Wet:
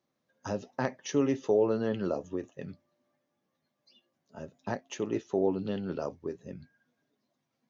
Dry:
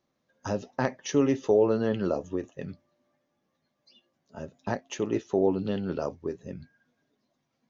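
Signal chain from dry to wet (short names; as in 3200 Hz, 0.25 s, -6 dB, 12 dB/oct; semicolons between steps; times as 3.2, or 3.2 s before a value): HPF 82 Hz; gain -3.5 dB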